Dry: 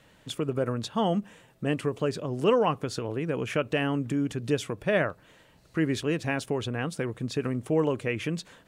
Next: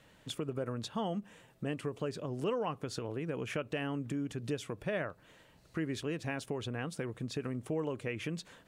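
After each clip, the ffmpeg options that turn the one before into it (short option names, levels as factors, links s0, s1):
-af "acompressor=threshold=0.0224:ratio=2,volume=0.668"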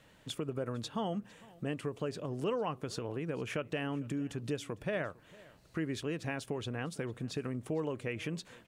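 -af "aecho=1:1:454:0.075"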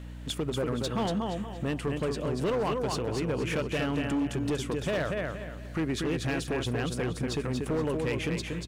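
-af "aecho=1:1:237|474|711|948:0.562|0.18|0.0576|0.0184,aeval=exprs='val(0)+0.00447*(sin(2*PI*60*n/s)+sin(2*PI*2*60*n/s)/2+sin(2*PI*3*60*n/s)/3+sin(2*PI*4*60*n/s)/4+sin(2*PI*5*60*n/s)/5)':c=same,asoftclip=type=hard:threshold=0.0266,volume=2.24"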